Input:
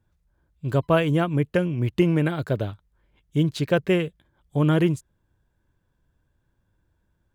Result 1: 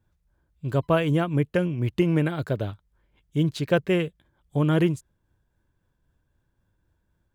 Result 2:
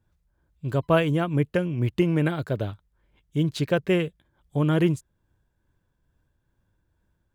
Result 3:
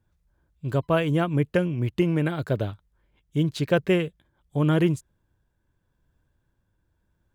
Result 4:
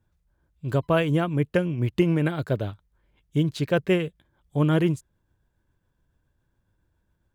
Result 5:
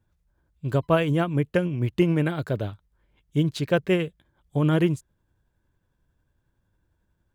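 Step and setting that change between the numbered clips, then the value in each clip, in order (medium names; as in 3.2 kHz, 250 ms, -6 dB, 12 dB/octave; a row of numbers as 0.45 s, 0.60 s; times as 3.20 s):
tremolo, rate: 3.8 Hz, 2.3 Hz, 0.85 Hz, 7.2 Hz, 11 Hz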